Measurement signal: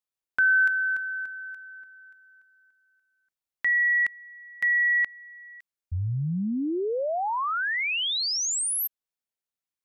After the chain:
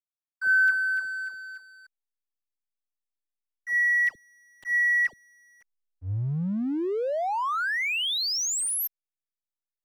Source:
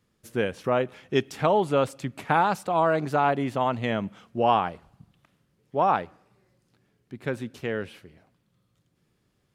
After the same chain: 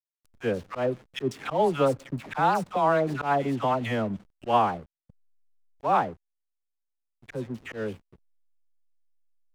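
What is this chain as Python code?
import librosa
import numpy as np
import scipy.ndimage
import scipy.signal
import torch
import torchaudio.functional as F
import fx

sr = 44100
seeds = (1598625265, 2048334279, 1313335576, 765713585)

y = fx.dispersion(x, sr, late='lows', ms=90.0, hz=1100.0)
y = fx.auto_swell(y, sr, attack_ms=108.0)
y = fx.backlash(y, sr, play_db=-38.5)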